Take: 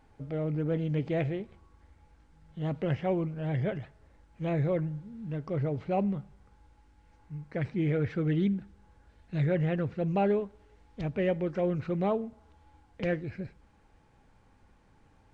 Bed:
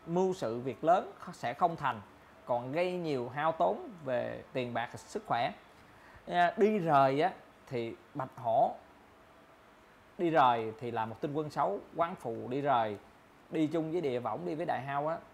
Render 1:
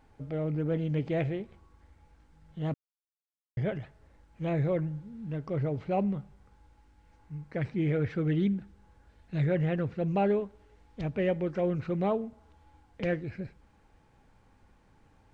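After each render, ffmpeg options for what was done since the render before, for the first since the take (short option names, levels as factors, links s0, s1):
-filter_complex "[0:a]asplit=3[s0][s1][s2];[s0]atrim=end=2.74,asetpts=PTS-STARTPTS,afade=t=out:st=2.736:d=0.004:c=hsin[s3];[s1]atrim=start=2.74:end=3.57,asetpts=PTS-STARTPTS,volume=0[s4];[s2]atrim=start=3.57,asetpts=PTS-STARTPTS,afade=t=in:d=0.004:c=hsin[s5];[s3][s4][s5]concat=n=3:v=0:a=1"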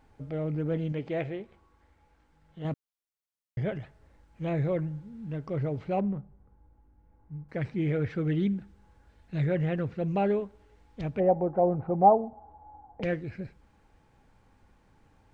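-filter_complex "[0:a]asettb=1/sr,asplit=3[s0][s1][s2];[s0]atrim=end=0.924[s3];[s1]atrim=start=0.92:end=2.65,asetpts=PTS-STARTPTS,afade=t=in:d=0.004:c=qsin,afade=t=out:st=1.726:d=0.004:c=qsin,bass=f=250:g=-7,treble=f=4000:g=-4[s4];[s2]atrim=start=2.646[s5];[s3][s4]acrossfade=d=0.004:c1=hsin:c2=qsin[s6];[s6][s5]acrossfade=d=0.004:c1=qsin:c2=hsin,asettb=1/sr,asplit=3[s7][s8][s9];[s7]atrim=end=5.994[s10];[s8]atrim=start=5.99:end=7.49,asetpts=PTS-STARTPTS,afade=t=in:d=0.004:c=qsin,afade=t=out:st=1.496:d=0.004:c=qsin,adynamicsmooth=sensitivity=2:basefreq=940[s11];[s9]atrim=start=7.486[s12];[s10][s11]acrossfade=d=0.004:c1=hsin:c2=qsin[s13];[s13][s12]acrossfade=d=0.004:c1=qsin:c2=hsin,asplit=3[s14][s15][s16];[s14]afade=t=out:st=11.19:d=0.02[s17];[s15]lowpass=f=790:t=q:w=9.1,afade=t=in:st=11.19:d=0.02,afade=t=out:st=13.01:d=0.02[s18];[s16]afade=t=in:st=13.01:d=0.02[s19];[s17][s18][s19]amix=inputs=3:normalize=0"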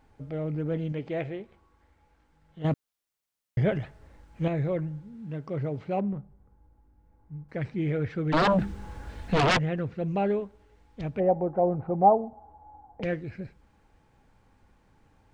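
-filter_complex "[0:a]asettb=1/sr,asplit=3[s0][s1][s2];[s0]atrim=end=2.644[s3];[s1]atrim=start=2.64:end=4.48,asetpts=PTS-STARTPTS,afade=t=in:d=0.004:c=qsin,afade=t=out:st=1.836:d=0.004:c=qsin,acontrast=63[s4];[s2]atrim=start=4.476[s5];[s3][s4]acrossfade=d=0.004:c1=hsin:c2=qsin[s6];[s6][s5]acrossfade=d=0.004:c1=qsin:c2=hsin,asettb=1/sr,asplit=3[s7][s8][s9];[s7]atrim=end=5.144[s10];[s8]atrim=start=5.14:end=6.13,asetpts=PTS-STARTPTS,afade=t=in:d=0.004:c=qsin,afade=t=out:st=0.986:d=0.004:c=qsin,highpass=91[s11];[s9]atrim=start=6.126[s12];[s10][s11]acrossfade=d=0.004:c1=hsin:c2=qsin[s13];[s13][s12]acrossfade=d=0.004:c1=qsin:c2=hsin,asplit=3[s14][s15][s16];[s14]afade=t=out:st=8.32:d=0.02[s17];[s15]aeval=exprs='0.119*sin(PI/2*5.62*val(0)/0.119)':c=same,afade=t=in:st=8.32:d=0.02,afade=t=out:st=9.57:d=0.02[s18];[s16]afade=t=in:st=9.57:d=0.02[s19];[s17][s18][s19]amix=inputs=3:normalize=0"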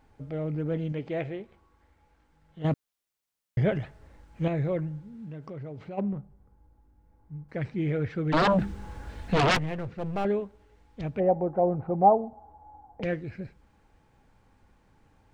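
-filter_complex "[0:a]asplit=3[s0][s1][s2];[s0]afade=t=out:st=5.11:d=0.02[s3];[s1]acompressor=threshold=0.0141:ratio=4:attack=3.2:release=140:knee=1:detection=peak,afade=t=in:st=5.11:d=0.02,afade=t=out:st=5.97:d=0.02[s4];[s2]afade=t=in:st=5.97:d=0.02[s5];[s3][s4][s5]amix=inputs=3:normalize=0,asettb=1/sr,asplit=3[s6][s7][s8];[s6]atrim=end=9.554[s9];[s7]atrim=start=9.55:end=10.25,asetpts=PTS-STARTPTS,afade=t=in:d=0.004:c=qsin,afade=t=out:st=0.696:d=0.004:c=qsin,aeval=exprs='clip(val(0),-1,0.0168)':c=same[s10];[s8]atrim=start=10.246[s11];[s9][s10]acrossfade=d=0.004:c1=hsin:c2=qsin[s12];[s12][s11]acrossfade=d=0.004:c1=qsin:c2=hsin"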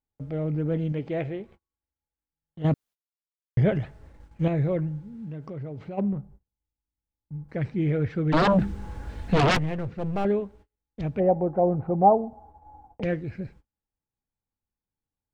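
-af "agate=range=0.02:threshold=0.00251:ratio=16:detection=peak,lowshelf=f=460:g=4.5"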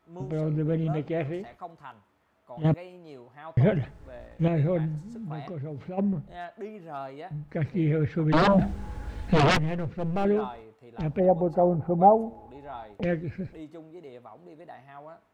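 -filter_complex "[1:a]volume=0.251[s0];[0:a][s0]amix=inputs=2:normalize=0"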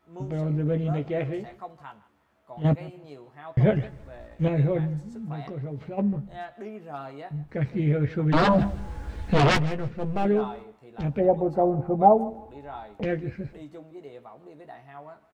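-filter_complex "[0:a]asplit=2[s0][s1];[s1]adelay=14,volume=0.447[s2];[s0][s2]amix=inputs=2:normalize=0,aecho=1:1:159|318:0.106|0.0233"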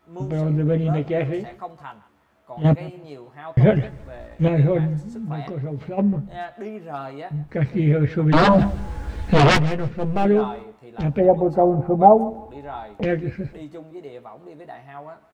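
-af "volume=1.88,alimiter=limit=0.891:level=0:latency=1"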